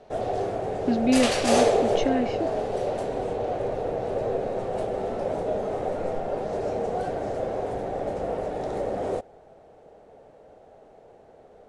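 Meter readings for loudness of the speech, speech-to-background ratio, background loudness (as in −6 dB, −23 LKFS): −27.0 LKFS, 0.5 dB, −27.5 LKFS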